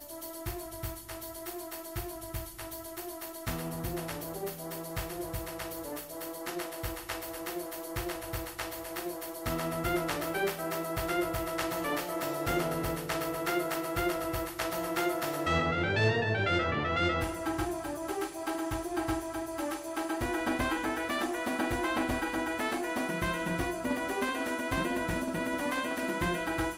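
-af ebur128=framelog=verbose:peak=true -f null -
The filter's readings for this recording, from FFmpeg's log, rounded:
Integrated loudness:
  I:         -33.2 LUFS
  Threshold: -43.2 LUFS
Loudness range:
  LRA:         8.1 LU
  Threshold: -53.1 LUFS
  LRA low:   -38.1 LUFS
  LRA high:  -29.9 LUFS
True peak:
  Peak:      -17.2 dBFS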